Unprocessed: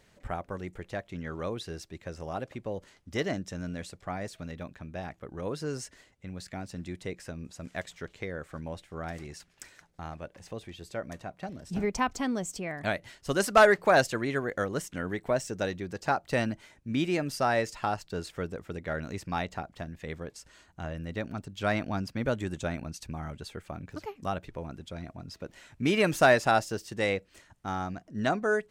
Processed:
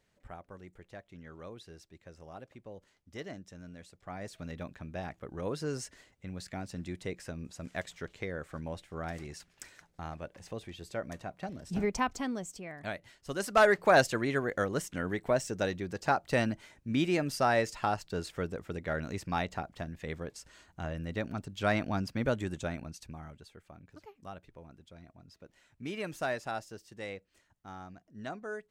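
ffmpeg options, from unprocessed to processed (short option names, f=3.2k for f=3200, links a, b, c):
-af "volume=6.5dB,afade=t=in:st=3.94:d=0.61:silence=0.281838,afade=t=out:st=11.83:d=0.74:silence=0.446684,afade=t=in:st=13.38:d=0.59:silence=0.421697,afade=t=out:st=22.21:d=1.29:silence=0.237137"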